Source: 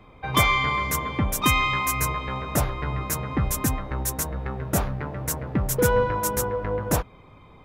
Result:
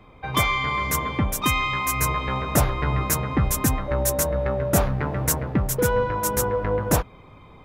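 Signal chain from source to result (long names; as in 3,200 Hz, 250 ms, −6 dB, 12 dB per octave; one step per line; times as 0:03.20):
0:03.87–0:04.85: steady tone 580 Hz −28 dBFS
speech leveller 0.5 s
level +1.5 dB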